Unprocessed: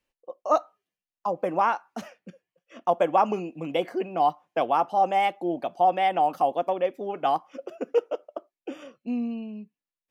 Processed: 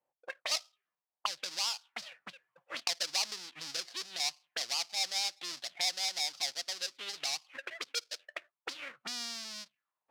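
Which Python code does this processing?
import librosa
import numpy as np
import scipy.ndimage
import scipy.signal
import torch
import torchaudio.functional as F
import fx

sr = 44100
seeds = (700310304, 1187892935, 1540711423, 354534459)

y = fx.halfwave_hold(x, sr)
y = fx.recorder_agc(y, sr, target_db=-17.5, rise_db_per_s=16.0, max_gain_db=30)
y = fx.peak_eq(y, sr, hz=130.0, db=14.0, octaves=0.64)
y = fx.auto_wah(y, sr, base_hz=730.0, top_hz=5000.0, q=3.2, full_db=-20.0, direction='up')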